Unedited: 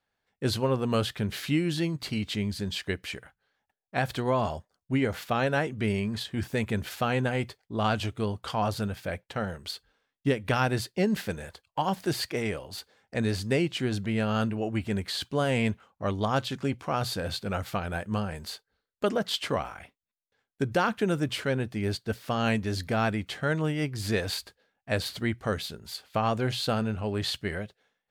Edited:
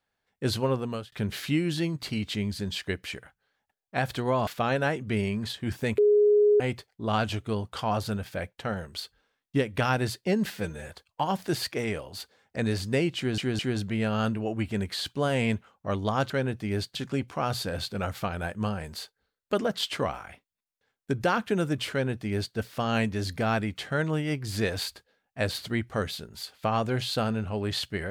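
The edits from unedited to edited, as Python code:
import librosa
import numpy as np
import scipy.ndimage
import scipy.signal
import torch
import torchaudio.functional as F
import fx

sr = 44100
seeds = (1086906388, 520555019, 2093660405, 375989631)

y = fx.edit(x, sr, fx.fade_out_span(start_s=0.71, length_s=0.41),
    fx.cut(start_s=4.47, length_s=0.71),
    fx.bleep(start_s=6.69, length_s=0.62, hz=416.0, db=-16.5),
    fx.stretch_span(start_s=11.21, length_s=0.26, factor=1.5),
    fx.stutter(start_s=13.75, slice_s=0.21, count=3),
    fx.duplicate(start_s=21.42, length_s=0.65, to_s=16.46), tone=tone)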